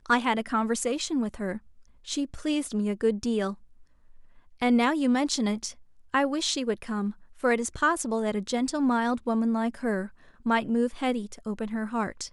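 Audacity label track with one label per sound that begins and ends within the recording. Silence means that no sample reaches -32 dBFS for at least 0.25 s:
2.080000	3.530000	sound
4.620000	5.700000	sound
6.140000	7.110000	sound
7.440000	10.060000	sound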